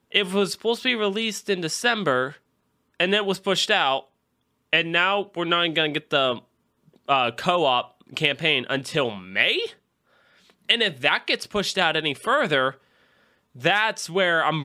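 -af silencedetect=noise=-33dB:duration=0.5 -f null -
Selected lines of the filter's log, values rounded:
silence_start: 2.32
silence_end: 3.00 | silence_duration: 0.68
silence_start: 4.00
silence_end: 4.73 | silence_duration: 0.73
silence_start: 6.38
silence_end: 7.09 | silence_duration: 0.70
silence_start: 9.70
silence_end: 10.69 | silence_duration: 0.99
silence_start: 12.71
silence_end: 13.60 | silence_duration: 0.89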